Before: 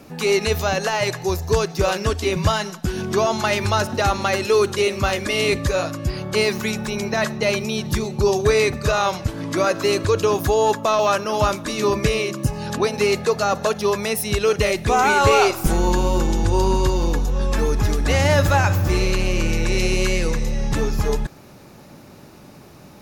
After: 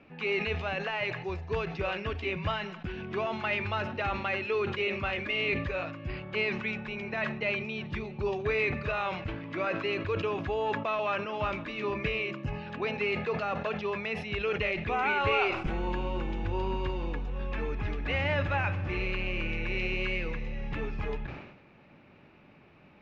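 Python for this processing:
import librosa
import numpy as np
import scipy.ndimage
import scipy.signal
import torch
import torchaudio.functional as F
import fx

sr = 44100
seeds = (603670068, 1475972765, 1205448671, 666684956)

y = fx.ladder_lowpass(x, sr, hz=2900.0, resonance_pct=55)
y = fx.hum_notches(y, sr, base_hz=60, count=2)
y = fx.sustainer(y, sr, db_per_s=63.0)
y = y * librosa.db_to_amplitude(-3.5)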